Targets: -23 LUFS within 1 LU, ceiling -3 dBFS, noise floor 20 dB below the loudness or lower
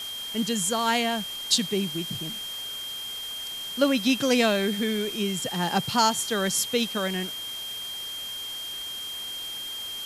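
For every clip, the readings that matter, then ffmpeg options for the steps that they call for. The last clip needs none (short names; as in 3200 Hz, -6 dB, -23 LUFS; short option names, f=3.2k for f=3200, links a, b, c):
steady tone 3200 Hz; tone level -33 dBFS; noise floor -35 dBFS; noise floor target -47 dBFS; loudness -26.5 LUFS; peak -7.5 dBFS; loudness target -23.0 LUFS
-> -af "bandreject=f=3.2k:w=30"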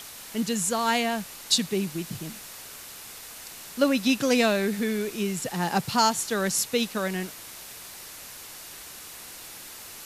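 steady tone none; noise floor -43 dBFS; noise floor target -46 dBFS
-> -af "afftdn=nr=6:nf=-43"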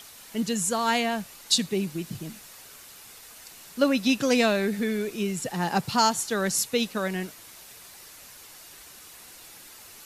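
noise floor -48 dBFS; loudness -26.0 LUFS; peak -7.5 dBFS; loudness target -23.0 LUFS
-> -af "volume=3dB"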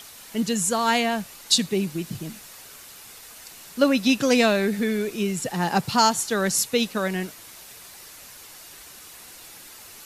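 loudness -23.0 LUFS; peak -4.5 dBFS; noise floor -45 dBFS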